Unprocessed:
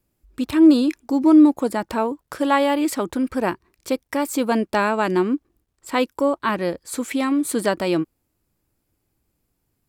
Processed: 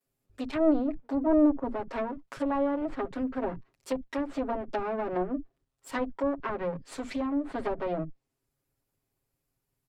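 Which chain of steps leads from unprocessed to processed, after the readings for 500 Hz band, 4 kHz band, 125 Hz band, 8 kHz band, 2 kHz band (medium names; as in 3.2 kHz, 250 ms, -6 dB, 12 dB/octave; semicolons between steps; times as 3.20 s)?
-7.5 dB, -17.0 dB, -9.0 dB, -20.5 dB, -13.5 dB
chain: comb filter that takes the minimum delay 7.4 ms; bands offset in time highs, lows 50 ms, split 220 Hz; low-pass that closes with the level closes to 930 Hz, closed at -19 dBFS; trim -6.5 dB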